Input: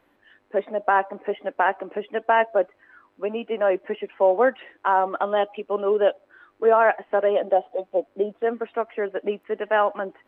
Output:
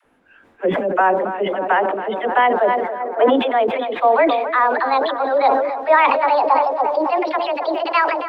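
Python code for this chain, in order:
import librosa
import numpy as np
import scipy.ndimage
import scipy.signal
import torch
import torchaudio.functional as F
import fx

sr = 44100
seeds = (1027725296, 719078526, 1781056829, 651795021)

y = fx.speed_glide(x, sr, from_pct=87, to_pct=161)
y = fx.dispersion(y, sr, late='lows', ms=51.0, hz=510.0)
y = fx.echo_tape(y, sr, ms=278, feedback_pct=81, wet_db=-11.0, lp_hz=1300.0, drive_db=7.0, wow_cents=10)
y = fx.spec_box(y, sr, start_s=3.0, length_s=0.36, low_hz=240.0, high_hz=2600.0, gain_db=9)
y = fx.sustainer(y, sr, db_per_s=43.0)
y = F.gain(torch.from_numpy(y), 3.5).numpy()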